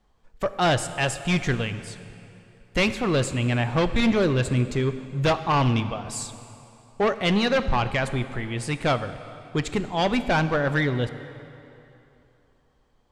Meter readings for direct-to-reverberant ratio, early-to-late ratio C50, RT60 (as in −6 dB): 11.0 dB, 12.0 dB, 2.9 s